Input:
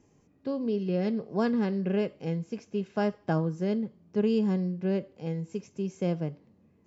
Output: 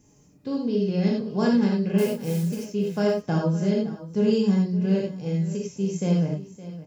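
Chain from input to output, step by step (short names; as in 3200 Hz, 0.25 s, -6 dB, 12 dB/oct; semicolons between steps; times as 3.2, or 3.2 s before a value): 1.98–2.56 companded quantiser 6-bit; tone controls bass +6 dB, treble +12 dB; echo 0.565 s -15.5 dB; non-linear reverb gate 0.12 s flat, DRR -2.5 dB; gain -1.5 dB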